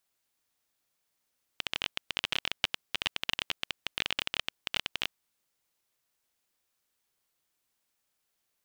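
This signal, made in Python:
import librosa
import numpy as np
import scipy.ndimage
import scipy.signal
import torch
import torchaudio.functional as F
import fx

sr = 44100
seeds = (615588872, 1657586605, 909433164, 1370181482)

y = fx.geiger_clicks(sr, seeds[0], length_s=3.8, per_s=19.0, level_db=-11.5)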